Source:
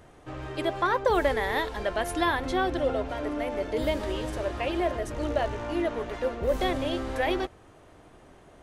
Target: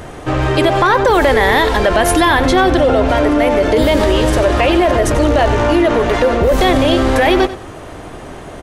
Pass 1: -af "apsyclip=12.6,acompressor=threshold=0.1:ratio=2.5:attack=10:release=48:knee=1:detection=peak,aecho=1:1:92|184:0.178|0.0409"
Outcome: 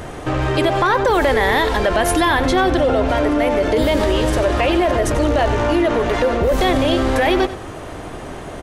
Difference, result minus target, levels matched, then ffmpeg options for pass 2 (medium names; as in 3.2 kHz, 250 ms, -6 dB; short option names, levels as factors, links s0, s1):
compression: peak gain reduction +4 dB
-af "apsyclip=12.6,acompressor=threshold=0.224:ratio=2.5:attack=10:release=48:knee=1:detection=peak,aecho=1:1:92|184:0.178|0.0409"